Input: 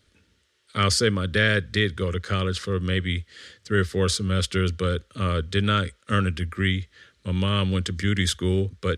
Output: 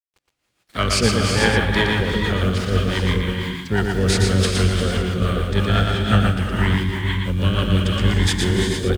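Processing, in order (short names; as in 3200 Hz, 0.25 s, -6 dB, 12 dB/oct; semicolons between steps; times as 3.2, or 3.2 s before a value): in parallel at -10 dB: overloaded stage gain 18.5 dB; on the sum: bit-crush 8-bit; non-linear reverb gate 0.47 s rising, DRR 1 dB; rotary speaker horn 6 Hz; harmoniser -12 st -5 dB, +4 st -16 dB; on a send: echo 0.117 s -4 dB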